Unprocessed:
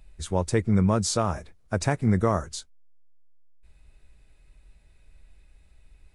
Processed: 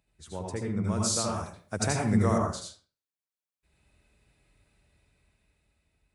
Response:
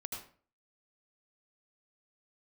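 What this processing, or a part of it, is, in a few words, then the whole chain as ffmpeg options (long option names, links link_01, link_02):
far laptop microphone: -filter_complex "[1:a]atrim=start_sample=2205[link_01];[0:a][link_01]afir=irnorm=-1:irlink=0,highpass=100,dynaudnorm=framelen=420:gausssize=7:maxgain=9dB,asettb=1/sr,asplit=3[link_02][link_03][link_04];[link_02]atrim=end=0.844[link_05];[link_03]atrim=start=0.84:end=2.38,asetpts=PTS-STARTPTS,afade=type=in:duration=0.004:curve=qsin,afade=type=out:start_time=1.536:duration=0.004:curve=qsin,highshelf=frequency=3700:gain=11.5[link_06];[link_04]atrim=start=2.376[link_07];[link_05][link_06]acrossfade=duration=0.004:curve1=hsin:curve2=qsin[link_08];[link_08][link_07]acrossfade=duration=0.004:curve1=qsin:curve2=hsin,volume=-8.5dB"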